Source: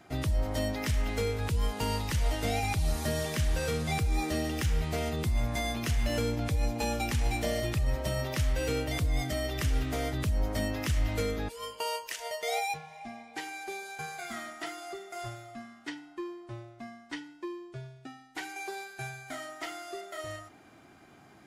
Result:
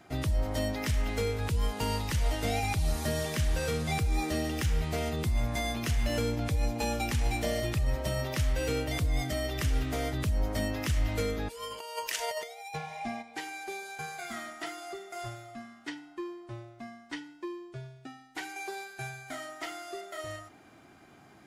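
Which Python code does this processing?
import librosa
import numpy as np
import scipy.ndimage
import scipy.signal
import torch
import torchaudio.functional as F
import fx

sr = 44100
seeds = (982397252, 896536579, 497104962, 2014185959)

y = fx.over_compress(x, sr, threshold_db=-38.0, ratio=-0.5, at=(11.7, 13.21), fade=0.02)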